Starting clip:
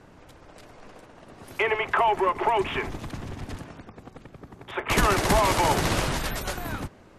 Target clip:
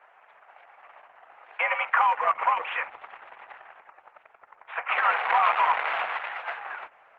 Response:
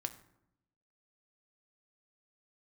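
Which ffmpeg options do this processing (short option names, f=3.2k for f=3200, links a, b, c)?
-filter_complex "[0:a]asplit=2[a][b];[1:a]atrim=start_sample=2205[c];[b][c]afir=irnorm=-1:irlink=0,volume=-13.5dB[d];[a][d]amix=inputs=2:normalize=0,highpass=f=590:t=q:w=0.5412,highpass=f=590:t=q:w=1.307,lowpass=f=2.5k:t=q:w=0.5176,lowpass=f=2.5k:t=q:w=0.7071,lowpass=f=2.5k:t=q:w=1.932,afreqshift=110" -ar 48000 -c:a libopus -b:a 10k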